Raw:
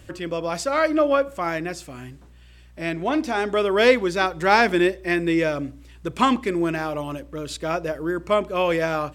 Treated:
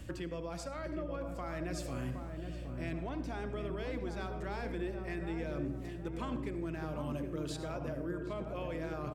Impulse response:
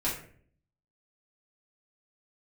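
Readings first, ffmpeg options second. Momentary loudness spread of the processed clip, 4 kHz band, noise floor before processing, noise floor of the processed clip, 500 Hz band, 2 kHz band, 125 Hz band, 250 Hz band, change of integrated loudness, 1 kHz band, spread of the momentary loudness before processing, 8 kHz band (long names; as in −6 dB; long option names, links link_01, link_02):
3 LU, −20.5 dB, −48 dBFS, −43 dBFS, −18.0 dB, −21.5 dB, −5.5 dB, −14.5 dB, −17.5 dB, −21.0 dB, 15 LU, −14.5 dB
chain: -filter_complex "[0:a]areverse,acompressor=threshold=-32dB:ratio=6,areverse,volume=25.5dB,asoftclip=hard,volume=-25.5dB,aeval=exprs='val(0)+0.00355*(sin(2*PI*60*n/s)+sin(2*PI*2*60*n/s)/2+sin(2*PI*3*60*n/s)/3+sin(2*PI*4*60*n/s)/4+sin(2*PI*5*60*n/s)/5)':channel_layout=same,asplit=2[link_01][link_02];[link_02]equalizer=frequency=680:width_type=o:width=2.2:gain=5.5[link_03];[1:a]atrim=start_sample=2205,adelay=64[link_04];[link_03][link_04]afir=irnorm=-1:irlink=0,volume=-19.5dB[link_05];[link_01][link_05]amix=inputs=2:normalize=0,acrossover=split=160[link_06][link_07];[link_07]acompressor=threshold=-37dB:ratio=6[link_08];[link_06][link_08]amix=inputs=2:normalize=0,lowshelf=frequency=490:gain=3.5,asplit=2[link_09][link_10];[link_10]adelay=767,lowpass=frequency=870:poles=1,volume=-4.5dB,asplit=2[link_11][link_12];[link_12]adelay=767,lowpass=frequency=870:poles=1,volume=0.54,asplit=2[link_13][link_14];[link_14]adelay=767,lowpass=frequency=870:poles=1,volume=0.54,asplit=2[link_15][link_16];[link_16]adelay=767,lowpass=frequency=870:poles=1,volume=0.54,asplit=2[link_17][link_18];[link_18]adelay=767,lowpass=frequency=870:poles=1,volume=0.54,asplit=2[link_19][link_20];[link_20]adelay=767,lowpass=frequency=870:poles=1,volume=0.54,asplit=2[link_21][link_22];[link_22]adelay=767,lowpass=frequency=870:poles=1,volume=0.54[link_23];[link_09][link_11][link_13][link_15][link_17][link_19][link_21][link_23]amix=inputs=8:normalize=0,volume=-3dB"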